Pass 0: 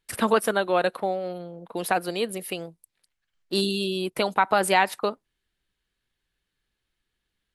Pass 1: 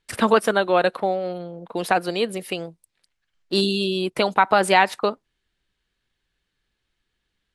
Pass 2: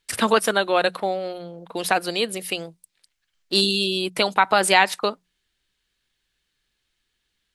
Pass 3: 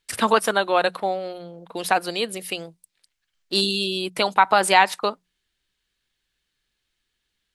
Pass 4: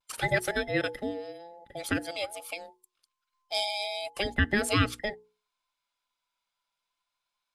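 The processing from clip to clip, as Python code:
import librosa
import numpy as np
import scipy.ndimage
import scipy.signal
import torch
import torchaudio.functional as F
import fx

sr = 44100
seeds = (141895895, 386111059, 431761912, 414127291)

y1 = scipy.signal.sosfilt(scipy.signal.butter(2, 7900.0, 'lowpass', fs=sr, output='sos'), x)
y1 = y1 * 10.0 ** (4.0 / 20.0)
y2 = fx.high_shelf(y1, sr, hz=2300.0, db=10.0)
y2 = fx.hum_notches(y2, sr, base_hz=60, count=3)
y2 = y2 * 10.0 ** (-2.5 / 20.0)
y3 = fx.dynamic_eq(y2, sr, hz=940.0, q=1.4, threshold_db=-29.0, ratio=4.0, max_db=5)
y3 = y3 * 10.0 ** (-2.0 / 20.0)
y4 = fx.band_invert(y3, sr, width_hz=1000)
y4 = fx.hum_notches(y4, sr, base_hz=60, count=8)
y4 = fx.vibrato(y4, sr, rate_hz=0.43, depth_cents=26.0)
y4 = y4 * 10.0 ** (-8.5 / 20.0)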